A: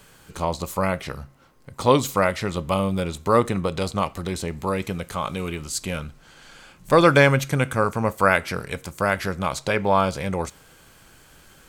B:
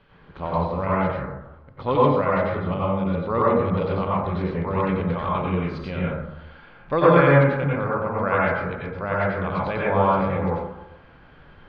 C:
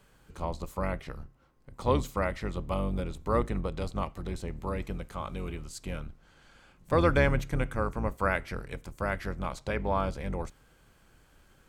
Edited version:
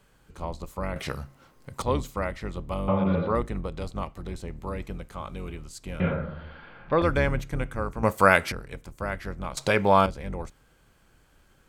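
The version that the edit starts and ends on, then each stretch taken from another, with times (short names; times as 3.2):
C
0.96–1.82 from A
2.88–3.35 from B
6–7.02 from B
8.03–8.52 from A
9.57–10.06 from A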